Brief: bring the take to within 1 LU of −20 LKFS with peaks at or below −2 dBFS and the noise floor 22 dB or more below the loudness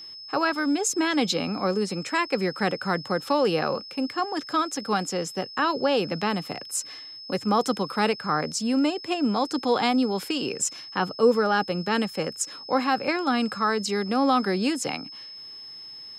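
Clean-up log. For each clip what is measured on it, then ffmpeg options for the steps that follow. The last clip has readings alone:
interfering tone 5,200 Hz; level of the tone −39 dBFS; integrated loudness −25.5 LKFS; sample peak −9.5 dBFS; target loudness −20.0 LKFS
→ -af "bandreject=frequency=5200:width=30"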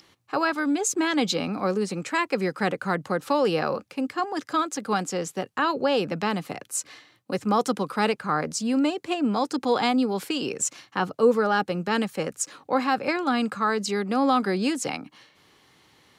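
interfering tone none found; integrated loudness −25.5 LKFS; sample peak −9.5 dBFS; target loudness −20.0 LKFS
→ -af "volume=5.5dB"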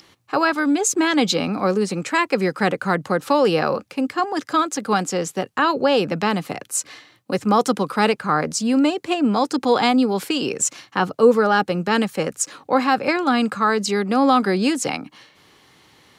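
integrated loudness −20.0 LKFS; sample peak −4.0 dBFS; background noise floor −55 dBFS

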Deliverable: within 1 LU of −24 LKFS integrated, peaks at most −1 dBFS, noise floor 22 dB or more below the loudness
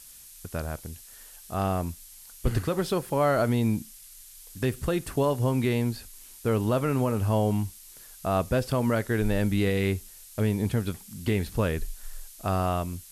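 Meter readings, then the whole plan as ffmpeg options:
background noise floor −49 dBFS; target noise floor −50 dBFS; integrated loudness −27.5 LKFS; sample peak −13.0 dBFS; target loudness −24.0 LKFS
→ -af "afftdn=noise_reduction=6:noise_floor=-49"
-af "volume=3.5dB"

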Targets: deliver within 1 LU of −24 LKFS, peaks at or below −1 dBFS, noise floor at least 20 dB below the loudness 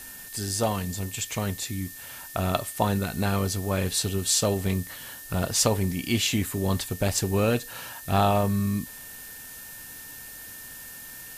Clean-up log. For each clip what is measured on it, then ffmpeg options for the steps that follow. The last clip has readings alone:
interfering tone 1,800 Hz; level of the tone −48 dBFS; background noise floor −42 dBFS; target noise floor −47 dBFS; integrated loudness −26.5 LKFS; sample peak −8.0 dBFS; target loudness −24.0 LKFS
→ -af "bandreject=frequency=1800:width=30"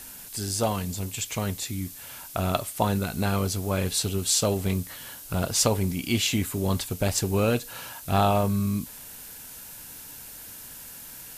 interfering tone none found; background noise floor −43 dBFS; target noise floor −47 dBFS
→ -af "afftdn=noise_reduction=6:noise_floor=-43"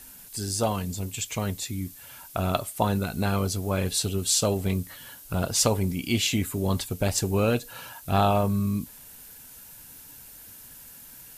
background noise floor −47 dBFS; integrated loudness −26.5 LKFS; sample peak −8.0 dBFS; target loudness −24.0 LKFS
→ -af "volume=2.5dB"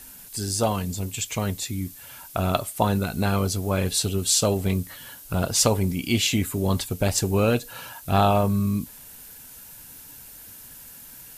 integrated loudness −24.0 LKFS; sample peak −5.5 dBFS; background noise floor −45 dBFS

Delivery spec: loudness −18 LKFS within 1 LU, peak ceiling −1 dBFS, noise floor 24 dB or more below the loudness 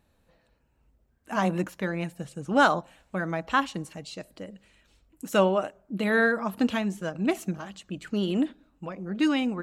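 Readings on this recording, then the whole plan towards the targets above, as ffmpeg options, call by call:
integrated loudness −27.5 LKFS; sample peak −8.0 dBFS; target loudness −18.0 LKFS
→ -af "volume=9.5dB,alimiter=limit=-1dB:level=0:latency=1"

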